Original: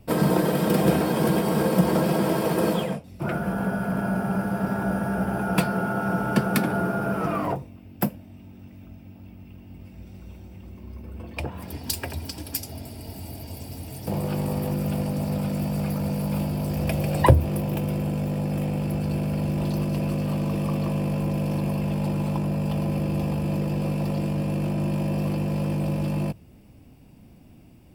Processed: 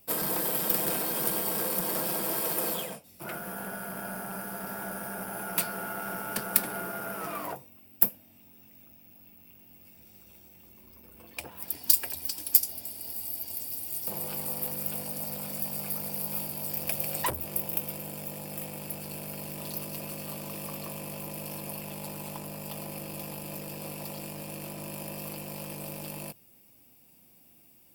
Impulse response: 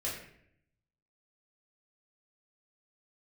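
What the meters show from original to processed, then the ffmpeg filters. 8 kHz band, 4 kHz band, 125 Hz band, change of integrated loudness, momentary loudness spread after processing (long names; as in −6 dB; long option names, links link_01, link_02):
+5.5 dB, −1.5 dB, −19.5 dB, −5.5 dB, 13 LU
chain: -af "aeval=exprs='(tanh(7.08*val(0)+0.5)-tanh(0.5))/7.08':channel_layout=same,aemphasis=mode=production:type=riaa,volume=-6dB"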